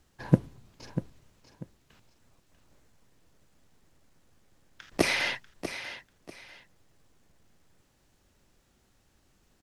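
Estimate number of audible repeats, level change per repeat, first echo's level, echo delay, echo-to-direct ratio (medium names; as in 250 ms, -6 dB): 2, -11.5 dB, -11.0 dB, 642 ms, -10.5 dB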